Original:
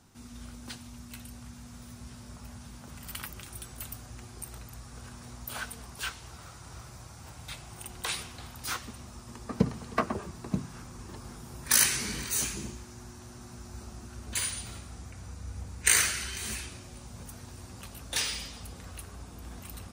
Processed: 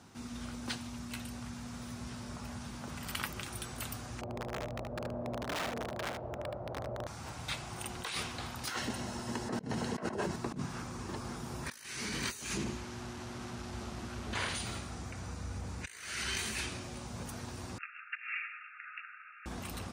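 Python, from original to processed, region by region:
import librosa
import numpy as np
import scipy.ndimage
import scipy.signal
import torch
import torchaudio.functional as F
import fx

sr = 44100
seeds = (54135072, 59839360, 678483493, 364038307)

y = fx.chain(x, sr, fx.lowpass_res(hz=600.0, q=6.1),
    fx.overflow_wrap(gain_db=36.0),
    fx.echo_single(ms=75, db=-5.5), at=(4.21, 7.07))
y = fx.chain(y, sr, fx.notch_comb(f0_hz=1200.0),
    fx.over_compress(threshold_db=-42.0, ratio=-1.0), at=(8.68, 10.36))
y = fx.chain(y, sr, fx.delta_mod(bps=64000, step_db=-43.0),
    fx.high_shelf(hz=6000.0, db=-7.5), at=(12.57, 14.55))
y = fx.chain(y, sr, fx.brickwall_bandpass(low_hz=1200.0, high_hz=2800.0),
    fx.over_compress(threshold_db=-44.0, ratio=-0.5), at=(17.78, 19.46))
y = fx.over_compress(y, sr, threshold_db=-38.0, ratio=-1.0)
y = fx.highpass(y, sr, hz=140.0, slope=6)
y = fx.high_shelf(y, sr, hz=8200.0, db=-12.0)
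y = y * 10.0 ** (3.0 / 20.0)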